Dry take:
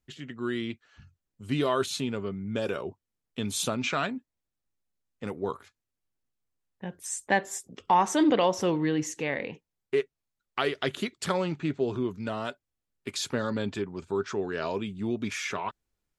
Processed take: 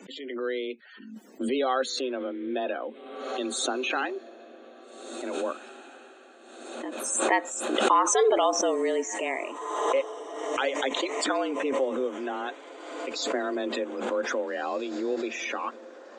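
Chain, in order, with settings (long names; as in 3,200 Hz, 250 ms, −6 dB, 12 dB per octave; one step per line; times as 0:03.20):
high-pass filter 74 Hz 24 dB per octave
frequency shifter +130 Hz
spectral peaks only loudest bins 64
on a send: feedback delay with all-pass diffusion 1,780 ms, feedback 46%, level −16 dB
on the sum: background raised ahead of every attack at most 42 dB per second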